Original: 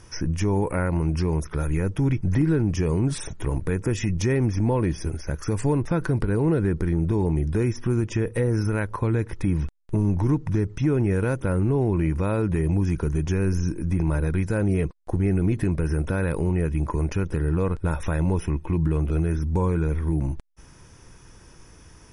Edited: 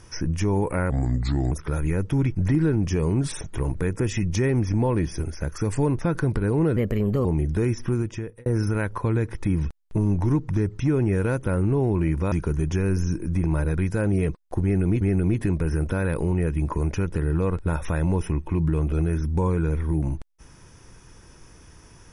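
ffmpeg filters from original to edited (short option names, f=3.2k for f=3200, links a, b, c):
-filter_complex "[0:a]asplit=8[a][b][c][d][e][f][g][h];[a]atrim=end=0.904[i];[b]atrim=start=0.9:end=1.38,asetpts=PTS-STARTPTS,asetrate=34398,aresample=44100,atrim=end_sample=27138,asetpts=PTS-STARTPTS[j];[c]atrim=start=1.376:end=6.634[k];[d]atrim=start=6.63:end=7.23,asetpts=PTS-STARTPTS,asetrate=54684,aresample=44100[l];[e]atrim=start=7.226:end=8.44,asetpts=PTS-STARTPTS,afade=t=out:st=0.634:d=0.58[m];[f]atrim=start=8.44:end=12.302,asetpts=PTS-STARTPTS,afade=t=in:d=0.004:c=hsin[n];[g]atrim=start=12.878:end=15.572[o];[h]atrim=start=15.188[p];[i][j]acrossfade=d=0.004:c1=hsin:c2=hsin[q];[q][k]acrossfade=d=0.004:c1=hsin:c2=hsin[r];[r][l]acrossfade=d=0.004:c1=hsin:c2=hsin[s];[m][n]concat=n=2:v=0:a=1[t];[s][t]acrossfade=d=0.004:c1=hsin:c2=hsin[u];[u][o]acrossfade=d=0.004:c1=hsin:c2=hsin[v];[v][p]acrossfade=d=0.004:c1=hsin:c2=hsin"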